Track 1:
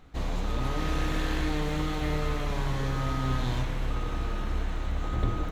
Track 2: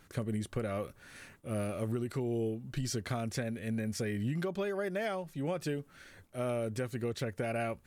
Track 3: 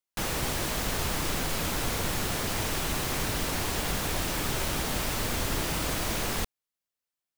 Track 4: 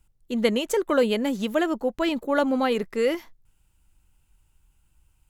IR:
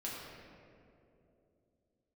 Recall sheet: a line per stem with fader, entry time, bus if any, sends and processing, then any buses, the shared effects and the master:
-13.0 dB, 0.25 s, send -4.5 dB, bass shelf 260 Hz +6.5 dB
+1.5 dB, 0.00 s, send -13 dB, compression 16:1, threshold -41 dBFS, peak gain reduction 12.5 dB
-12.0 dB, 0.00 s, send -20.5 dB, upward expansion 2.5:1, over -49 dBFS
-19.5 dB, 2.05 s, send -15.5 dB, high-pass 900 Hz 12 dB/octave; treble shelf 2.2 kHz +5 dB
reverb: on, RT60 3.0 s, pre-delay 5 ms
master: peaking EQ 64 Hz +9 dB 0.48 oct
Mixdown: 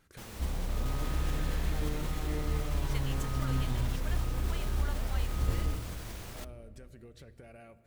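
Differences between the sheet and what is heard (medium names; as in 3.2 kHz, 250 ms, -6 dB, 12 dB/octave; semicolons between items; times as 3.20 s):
stem 2 +1.5 dB -> -8.5 dB; stem 4: entry 2.05 s -> 2.50 s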